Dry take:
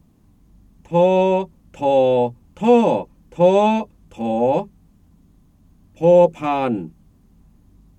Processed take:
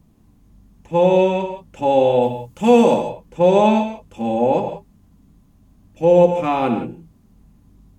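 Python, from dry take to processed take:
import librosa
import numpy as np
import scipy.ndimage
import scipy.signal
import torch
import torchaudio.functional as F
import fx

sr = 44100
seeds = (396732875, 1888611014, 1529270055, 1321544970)

y = fx.high_shelf(x, sr, hz=5000.0, db=11.0, at=(2.22, 2.94))
y = fx.rev_gated(y, sr, seeds[0], gate_ms=200, shape='flat', drr_db=5.0)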